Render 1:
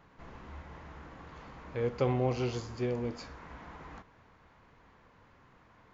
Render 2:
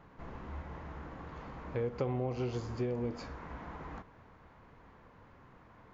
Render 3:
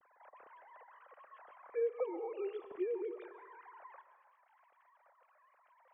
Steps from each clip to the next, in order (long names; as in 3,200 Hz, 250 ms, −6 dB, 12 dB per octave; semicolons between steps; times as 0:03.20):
high-shelf EQ 2,000 Hz −8.5 dB; downward compressor 5 to 1, threshold −35 dBFS, peak gain reduction 10 dB; level +4 dB
three sine waves on the formant tracks; convolution reverb RT60 1.2 s, pre-delay 86 ms, DRR 11.5 dB; level −4 dB